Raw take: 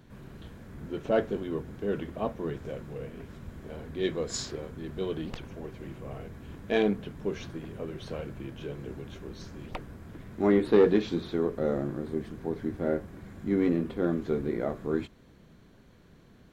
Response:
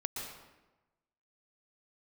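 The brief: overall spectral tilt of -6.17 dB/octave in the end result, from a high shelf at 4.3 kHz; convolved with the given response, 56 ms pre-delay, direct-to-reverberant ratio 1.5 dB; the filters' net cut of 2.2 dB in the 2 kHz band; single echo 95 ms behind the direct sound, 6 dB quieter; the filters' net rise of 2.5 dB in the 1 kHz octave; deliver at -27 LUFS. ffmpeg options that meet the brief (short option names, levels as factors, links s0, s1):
-filter_complex "[0:a]equalizer=f=1000:t=o:g=4.5,equalizer=f=2000:t=o:g=-5.5,highshelf=f=4300:g=5.5,aecho=1:1:95:0.501,asplit=2[s0][s1];[1:a]atrim=start_sample=2205,adelay=56[s2];[s1][s2]afir=irnorm=-1:irlink=0,volume=0.668[s3];[s0][s3]amix=inputs=2:normalize=0,volume=1.06"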